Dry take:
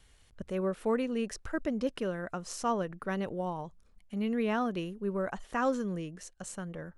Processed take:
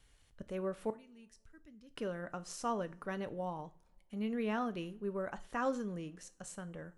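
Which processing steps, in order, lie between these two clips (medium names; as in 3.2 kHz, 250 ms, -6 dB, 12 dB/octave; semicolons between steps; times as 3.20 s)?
0.90–1.91 s: amplifier tone stack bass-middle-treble 6-0-2; two-slope reverb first 0.32 s, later 2 s, from -27 dB, DRR 11.5 dB; trim -5.5 dB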